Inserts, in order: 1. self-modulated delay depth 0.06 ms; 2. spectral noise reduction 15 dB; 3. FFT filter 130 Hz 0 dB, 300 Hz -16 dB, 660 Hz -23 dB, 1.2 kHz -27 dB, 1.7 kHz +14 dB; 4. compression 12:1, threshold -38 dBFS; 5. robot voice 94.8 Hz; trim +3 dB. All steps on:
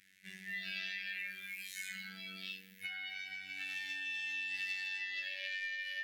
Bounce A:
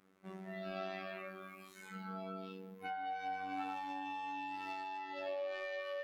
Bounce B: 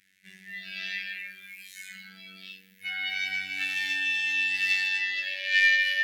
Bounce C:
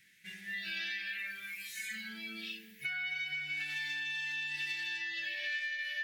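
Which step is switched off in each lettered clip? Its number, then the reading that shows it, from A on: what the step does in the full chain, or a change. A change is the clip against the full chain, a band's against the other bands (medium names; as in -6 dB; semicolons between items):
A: 3, 1 kHz band +33.5 dB; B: 4, mean gain reduction 8.0 dB; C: 5, 250 Hz band +1.5 dB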